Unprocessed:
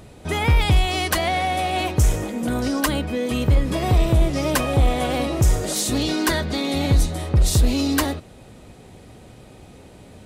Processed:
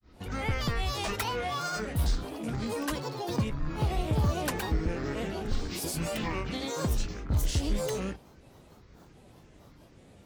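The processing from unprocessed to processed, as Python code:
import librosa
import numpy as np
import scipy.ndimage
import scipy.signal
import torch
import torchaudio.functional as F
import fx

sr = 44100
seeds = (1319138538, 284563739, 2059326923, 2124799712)

y = fx.rattle_buzz(x, sr, strikes_db=-27.0, level_db=-27.0)
y = fx.granulator(y, sr, seeds[0], grain_ms=211.0, per_s=11.0, spray_ms=100.0, spread_st=12)
y = y * 10.0 ** (-8.5 / 20.0)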